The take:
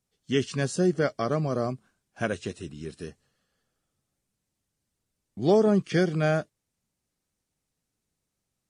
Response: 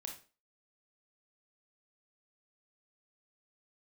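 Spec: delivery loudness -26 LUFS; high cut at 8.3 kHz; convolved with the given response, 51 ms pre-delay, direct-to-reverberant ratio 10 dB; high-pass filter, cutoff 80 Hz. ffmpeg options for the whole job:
-filter_complex "[0:a]highpass=80,lowpass=8300,asplit=2[s0][s1];[1:a]atrim=start_sample=2205,adelay=51[s2];[s1][s2]afir=irnorm=-1:irlink=0,volume=0.447[s3];[s0][s3]amix=inputs=2:normalize=0"

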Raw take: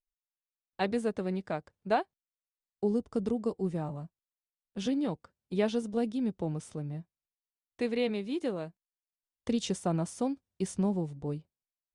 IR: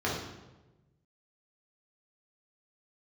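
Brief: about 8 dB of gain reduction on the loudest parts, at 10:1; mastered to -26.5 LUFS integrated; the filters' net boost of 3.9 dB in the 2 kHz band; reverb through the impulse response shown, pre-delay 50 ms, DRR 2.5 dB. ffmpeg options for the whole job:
-filter_complex "[0:a]equalizer=f=2000:t=o:g=5,acompressor=threshold=0.0316:ratio=10,asplit=2[s0][s1];[1:a]atrim=start_sample=2205,adelay=50[s2];[s1][s2]afir=irnorm=-1:irlink=0,volume=0.237[s3];[s0][s3]amix=inputs=2:normalize=0,volume=2.24"

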